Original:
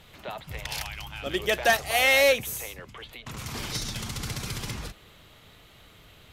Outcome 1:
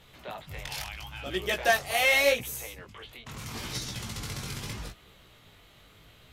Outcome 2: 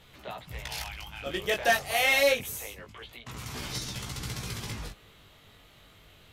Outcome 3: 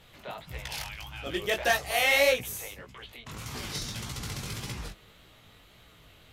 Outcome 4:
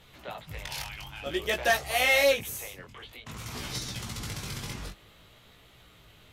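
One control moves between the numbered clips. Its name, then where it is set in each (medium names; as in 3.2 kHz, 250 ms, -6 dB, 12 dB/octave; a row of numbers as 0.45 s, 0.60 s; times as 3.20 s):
chorus, rate: 0.78 Hz, 0.26 Hz, 1.7 Hz, 0.53 Hz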